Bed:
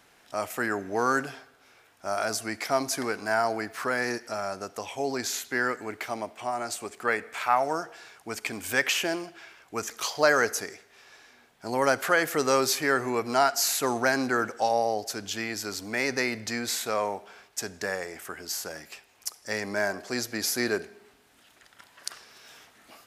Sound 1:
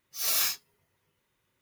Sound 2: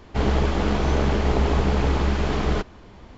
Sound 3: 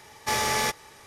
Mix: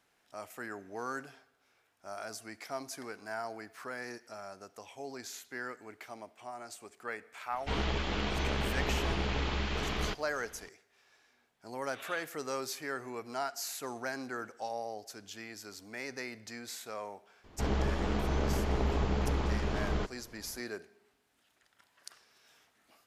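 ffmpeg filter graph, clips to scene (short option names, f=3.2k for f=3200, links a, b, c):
-filter_complex "[2:a]asplit=2[a][b];[0:a]volume=-13.5dB[c];[a]equalizer=f=3.1k:w=0.58:g=11[d];[1:a]aresample=8000,aresample=44100[e];[d]atrim=end=3.17,asetpts=PTS-STARTPTS,volume=-13dB,afade=t=in:d=0.004:c=hsin,afade=t=out:st=3.166:d=0.004:c=hsin,adelay=7520[f];[e]atrim=end=1.61,asetpts=PTS-STARTPTS,volume=-12dB,afade=t=in:d=0.004:c=hsin,afade=t=out:st=1.606:d=0.004:c=hsin,adelay=11720[g];[b]atrim=end=3.17,asetpts=PTS-STARTPTS,volume=-10dB,afade=t=in:d=0.004:c=hsin,afade=t=out:st=3.166:d=0.004:c=hsin,adelay=17440[h];[c][f][g][h]amix=inputs=4:normalize=0"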